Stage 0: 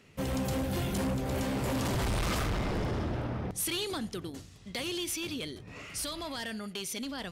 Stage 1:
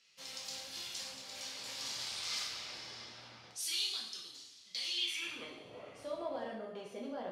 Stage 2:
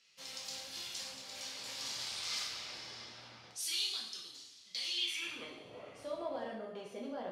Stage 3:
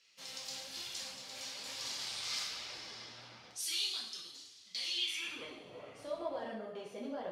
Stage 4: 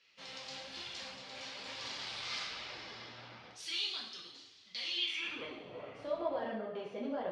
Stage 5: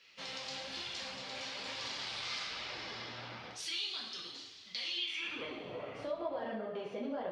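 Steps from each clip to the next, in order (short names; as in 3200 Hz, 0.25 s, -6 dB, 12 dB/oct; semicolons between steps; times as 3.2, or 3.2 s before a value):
band-pass sweep 4800 Hz -> 580 Hz, 4.87–5.66; two-slope reverb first 0.74 s, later 2.9 s, from -21 dB, DRR -2.5 dB; gain +1 dB
nothing audible
flange 1.1 Hz, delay 1.7 ms, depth 6.5 ms, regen -41%; gain +4 dB
LPF 3300 Hz 12 dB/oct; gain +3.5 dB
compressor 2:1, threshold -48 dBFS, peak gain reduction 10 dB; gain +6.5 dB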